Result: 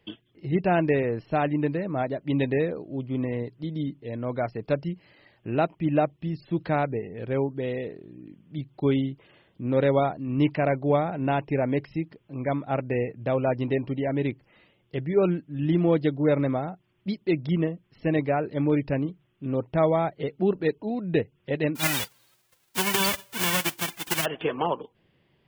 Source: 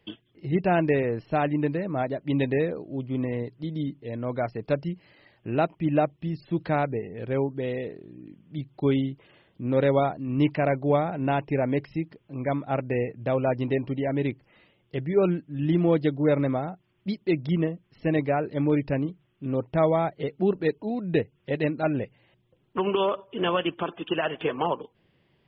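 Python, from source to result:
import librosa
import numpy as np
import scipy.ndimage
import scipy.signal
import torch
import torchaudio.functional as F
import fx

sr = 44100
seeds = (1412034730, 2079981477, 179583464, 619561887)

y = fx.envelope_flatten(x, sr, power=0.1, at=(21.75, 24.24), fade=0.02)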